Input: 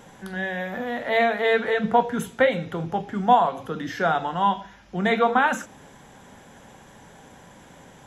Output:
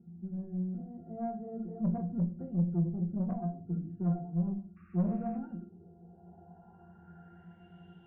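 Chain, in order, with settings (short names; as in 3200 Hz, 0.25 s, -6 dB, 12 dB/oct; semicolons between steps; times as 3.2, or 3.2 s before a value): octave resonator F, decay 0.18 s; painted sound noise, 4.76–5.38, 1100–2800 Hz -37 dBFS; low-pass sweep 250 Hz -> 3100 Hz, 5.28–7.89; tube stage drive 29 dB, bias 0.2; shoebox room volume 220 m³, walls furnished, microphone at 0.73 m; gain +2 dB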